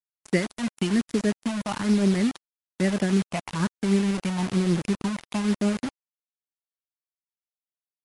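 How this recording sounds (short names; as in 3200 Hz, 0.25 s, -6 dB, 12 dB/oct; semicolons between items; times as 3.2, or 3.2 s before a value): phasing stages 6, 1.1 Hz, lowest notch 400–1100 Hz; tremolo triangle 6.4 Hz, depth 55%; a quantiser's noise floor 6-bit, dither none; MP3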